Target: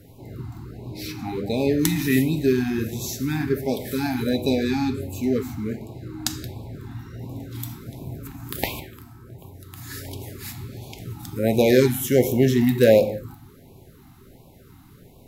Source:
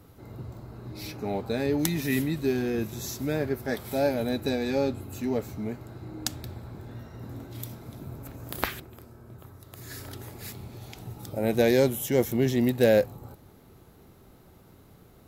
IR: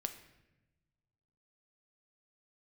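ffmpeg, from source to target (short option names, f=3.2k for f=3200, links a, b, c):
-filter_complex "[1:a]atrim=start_sample=2205,afade=t=out:st=0.23:d=0.01,atrim=end_sample=10584,asetrate=38808,aresample=44100[a];[0:a][a]afir=irnorm=-1:irlink=0,afftfilt=real='re*(1-between(b*sr/1024,470*pow(1600/470,0.5+0.5*sin(2*PI*1.4*pts/sr))/1.41,470*pow(1600/470,0.5+0.5*sin(2*PI*1.4*pts/sr))*1.41))':imag='im*(1-between(b*sr/1024,470*pow(1600/470,0.5+0.5*sin(2*PI*1.4*pts/sr))/1.41,470*pow(1600/470,0.5+0.5*sin(2*PI*1.4*pts/sr))*1.41))':win_size=1024:overlap=0.75,volume=5.5dB"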